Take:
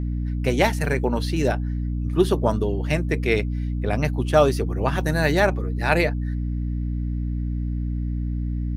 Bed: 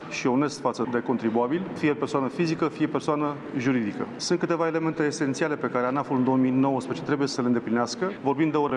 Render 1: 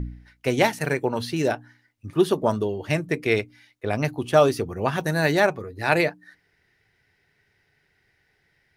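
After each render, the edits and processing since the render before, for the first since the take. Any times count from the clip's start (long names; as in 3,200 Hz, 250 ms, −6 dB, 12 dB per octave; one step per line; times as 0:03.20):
hum removal 60 Hz, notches 5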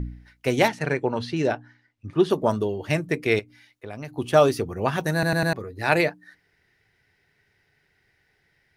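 0:00.68–0:02.30: high-frequency loss of the air 88 metres
0:03.39–0:04.17: downward compressor 2 to 1, threshold −41 dBFS
0:05.13: stutter in place 0.10 s, 4 plays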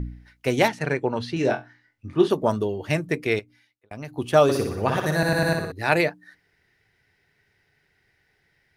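0:01.34–0:02.28: flutter between parallel walls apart 3.9 metres, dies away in 0.21 s
0:03.18–0:03.91: fade out
0:04.43–0:05.72: flutter between parallel walls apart 10.3 metres, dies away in 0.72 s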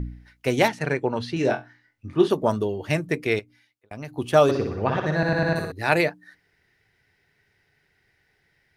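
0:04.51–0:05.56: high-frequency loss of the air 180 metres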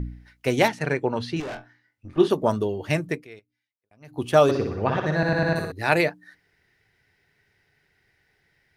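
0:01.40–0:02.18: tube saturation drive 31 dB, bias 0.7
0:03.07–0:04.20: duck −21 dB, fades 0.20 s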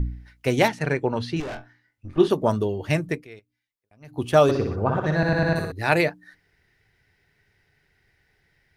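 0:04.75–0:05.04: gain on a spectral selection 1,600–6,800 Hz −12 dB
low-shelf EQ 82 Hz +9.5 dB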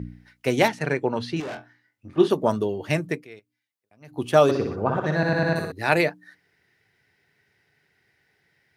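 high-pass filter 140 Hz 12 dB per octave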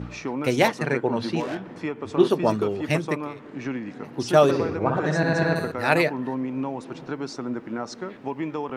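mix in bed −6.5 dB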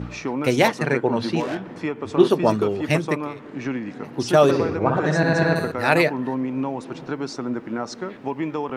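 level +3 dB
brickwall limiter −3 dBFS, peak gain reduction 3 dB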